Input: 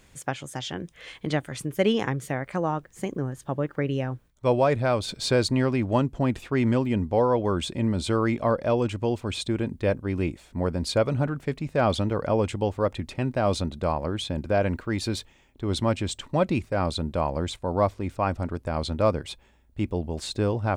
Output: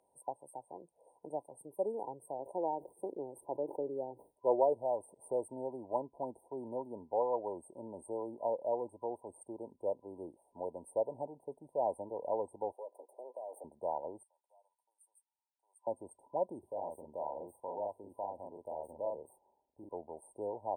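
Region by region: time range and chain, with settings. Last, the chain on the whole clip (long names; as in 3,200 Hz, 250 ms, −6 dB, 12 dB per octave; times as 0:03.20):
0:02.39–0:04.73: Butterworth band-reject 3,500 Hz, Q 0.72 + parametric band 360 Hz +8 dB 0.92 octaves + level that may fall only so fast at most 120 dB per second
0:12.72–0:13.64: lower of the sound and its delayed copy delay 1.6 ms + Butterworth high-pass 290 Hz + downward compressor 5 to 1, threshold −31 dBFS
0:14.23–0:15.87: four-pole ladder high-pass 1,600 Hz, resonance 35% + multiband upward and downward compressor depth 40%
0:16.59–0:19.89: double-tracking delay 40 ms −2.5 dB + downward compressor 2 to 1, threshold −27 dBFS + linearly interpolated sample-rate reduction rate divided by 2×
whole clip: meter weighting curve D; brick-wall band-stop 1,000–8,400 Hz; three-way crossover with the lows and the highs turned down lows −21 dB, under 470 Hz, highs −15 dB, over 5,900 Hz; level −6 dB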